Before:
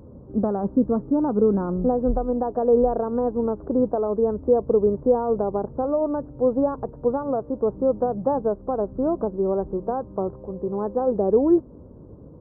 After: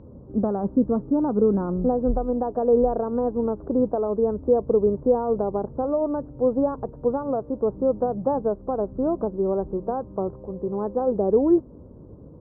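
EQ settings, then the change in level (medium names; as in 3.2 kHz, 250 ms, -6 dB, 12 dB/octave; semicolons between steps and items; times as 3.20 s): distance through air 300 m; 0.0 dB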